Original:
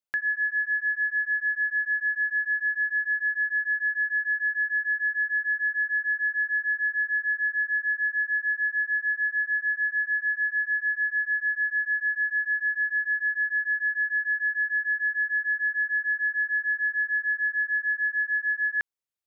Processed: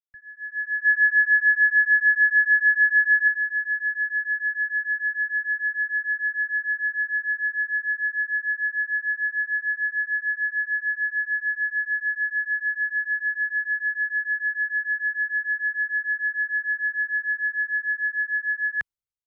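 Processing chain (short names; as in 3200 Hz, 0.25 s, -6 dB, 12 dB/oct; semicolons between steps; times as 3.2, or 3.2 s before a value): AGC gain up to 10 dB; 0.84–3.28 dynamic EQ 1500 Hz, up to +5 dB, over -28 dBFS, Q 2.4; three-band expander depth 100%; gain -8.5 dB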